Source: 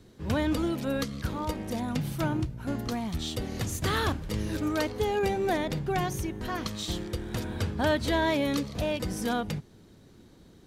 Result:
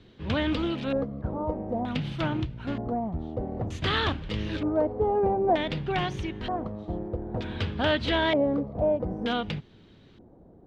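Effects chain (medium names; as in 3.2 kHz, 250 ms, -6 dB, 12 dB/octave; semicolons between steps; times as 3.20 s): LFO low-pass square 0.54 Hz 700–3200 Hz; loudspeaker Doppler distortion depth 0.18 ms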